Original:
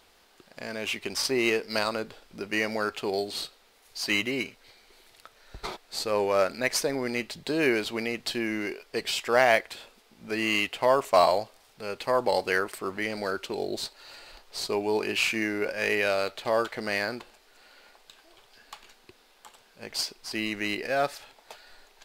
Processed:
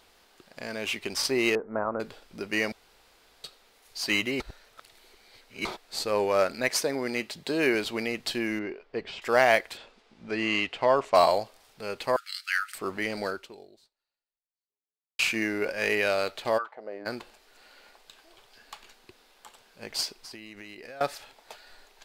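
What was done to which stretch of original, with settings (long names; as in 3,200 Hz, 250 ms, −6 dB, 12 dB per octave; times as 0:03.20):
0:01.55–0:02.00: Butterworth low-pass 1,400 Hz
0:02.72–0:03.44: fill with room tone
0:04.40–0:05.65: reverse
0:06.69–0:07.75: high-pass filter 130 Hz 6 dB per octave
0:08.59–0:09.22: head-to-tape spacing loss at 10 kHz 32 dB
0:09.77–0:11.15: high-frequency loss of the air 97 metres
0:12.16–0:12.75: linear-phase brick-wall high-pass 1,200 Hz
0:13.26–0:15.19: fade out exponential
0:16.57–0:17.05: resonant band-pass 1,500 Hz → 280 Hz, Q 3.5
0:20.18–0:21.01: downward compressor 10 to 1, threshold −40 dBFS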